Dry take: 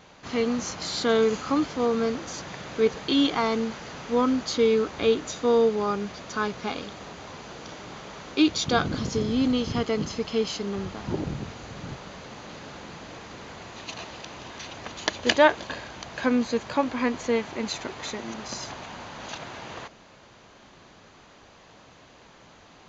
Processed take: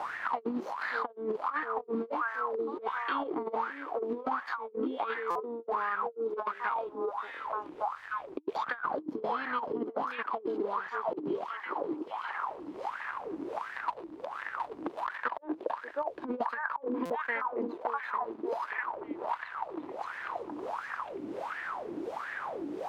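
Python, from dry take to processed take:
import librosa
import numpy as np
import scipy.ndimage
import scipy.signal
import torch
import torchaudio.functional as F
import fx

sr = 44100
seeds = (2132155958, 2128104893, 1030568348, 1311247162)

y = np.sign(x) * np.maximum(np.abs(x) - 10.0 ** (-35.0 / 20.0), 0.0)
y = fx.graphic_eq_15(y, sr, hz=(100, 1000, 6300), db=(-10, 7, -10))
y = fx.dmg_noise_colour(y, sr, seeds[0], colour='pink', level_db=-58.0)
y = fx.echo_stepped(y, sr, ms=581, hz=390.0, octaves=1.4, feedback_pct=70, wet_db=-4.0)
y = fx.wah_lfo(y, sr, hz=1.4, low_hz=300.0, high_hz=1800.0, q=10.0)
y = fx.over_compress(y, sr, threshold_db=-44.0, ratio=-0.5)
y = fx.peak_eq(y, sr, hz=920.0, db=2.5, octaves=0.77)
y = fx.buffer_glitch(y, sr, at_s=(5.3, 17.05), block=256, repeats=8)
y = fx.band_squash(y, sr, depth_pct=100)
y = y * librosa.db_to_amplitude(8.5)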